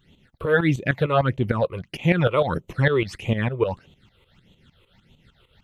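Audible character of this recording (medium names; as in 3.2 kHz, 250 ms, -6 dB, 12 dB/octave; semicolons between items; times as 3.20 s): phasing stages 8, 1.6 Hz, lowest notch 210–1600 Hz; tremolo saw up 6.6 Hz, depth 75%; AAC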